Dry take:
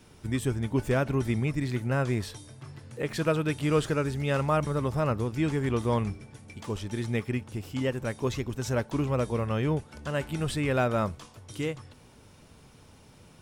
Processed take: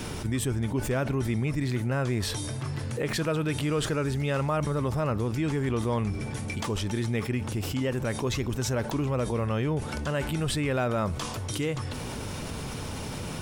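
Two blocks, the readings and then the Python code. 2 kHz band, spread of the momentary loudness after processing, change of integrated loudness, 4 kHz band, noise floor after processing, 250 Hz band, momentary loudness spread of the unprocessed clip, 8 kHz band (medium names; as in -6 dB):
+0.5 dB, 6 LU, 0.0 dB, +5.0 dB, -35 dBFS, +0.5 dB, 10 LU, +7.0 dB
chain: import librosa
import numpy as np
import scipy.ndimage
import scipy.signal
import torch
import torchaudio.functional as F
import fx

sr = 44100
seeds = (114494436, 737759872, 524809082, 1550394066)

y = fx.env_flatten(x, sr, amount_pct=70)
y = F.gain(torch.from_numpy(y), -4.5).numpy()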